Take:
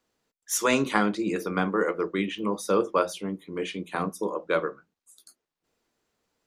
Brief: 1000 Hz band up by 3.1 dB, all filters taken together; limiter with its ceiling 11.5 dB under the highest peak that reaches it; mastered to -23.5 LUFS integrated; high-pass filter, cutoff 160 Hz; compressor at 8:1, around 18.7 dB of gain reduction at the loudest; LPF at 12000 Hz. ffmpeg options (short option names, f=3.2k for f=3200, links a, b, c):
-af "highpass=160,lowpass=12k,equalizer=f=1k:t=o:g=4,acompressor=threshold=-37dB:ratio=8,volume=21dB,alimiter=limit=-12dB:level=0:latency=1"